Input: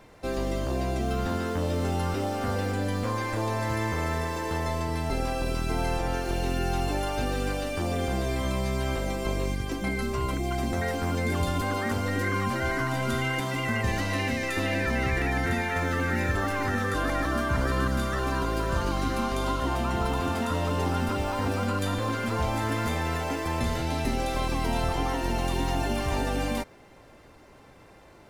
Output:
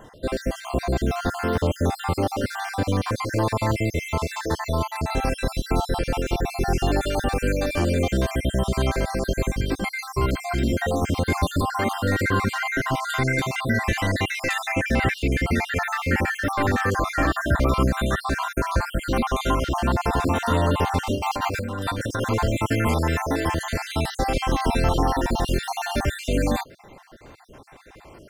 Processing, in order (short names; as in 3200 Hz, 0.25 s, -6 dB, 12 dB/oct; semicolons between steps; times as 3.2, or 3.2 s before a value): random spectral dropouts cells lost 51%; 21.15–22.24 negative-ratio compressor -34 dBFS, ratio -1; gain +7.5 dB